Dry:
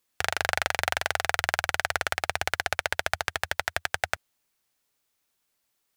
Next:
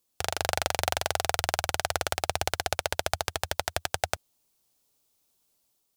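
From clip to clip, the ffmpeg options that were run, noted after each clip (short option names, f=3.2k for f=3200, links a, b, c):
-af "equalizer=f=1.8k:t=o:w=1.3:g=-12,dynaudnorm=f=110:g=7:m=4dB,volume=1.5dB"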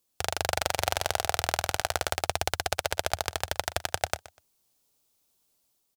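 -af "aecho=1:1:123|246:0.126|0.0302"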